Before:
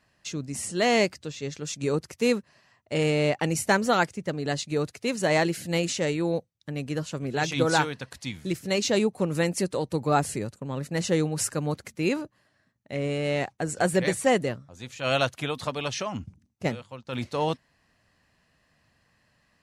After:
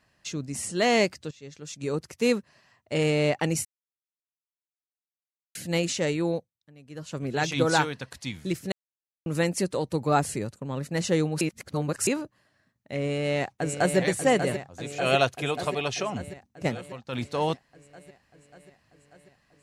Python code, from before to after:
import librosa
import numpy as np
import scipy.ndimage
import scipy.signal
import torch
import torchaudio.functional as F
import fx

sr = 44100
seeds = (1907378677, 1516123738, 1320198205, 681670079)

y = fx.echo_throw(x, sr, start_s=13.03, length_s=0.94, ms=590, feedback_pct=70, wet_db=-7.5)
y = fx.small_body(y, sr, hz=(400.0, 710.0, 2500.0), ring_ms=45, db=7, at=(14.84, 16.15))
y = fx.edit(y, sr, fx.fade_in_from(start_s=1.31, length_s=0.95, floor_db=-15.5),
    fx.silence(start_s=3.65, length_s=1.9),
    fx.fade_down_up(start_s=6.3, length_s=0.88, db=-19.5, fade_s=0.41, curve='qua'),
    fx.silence(start_s=8.72, length_s=0.54),
    fx.reverse_span(start_s=11.41, length_s=0.66), tone=tone)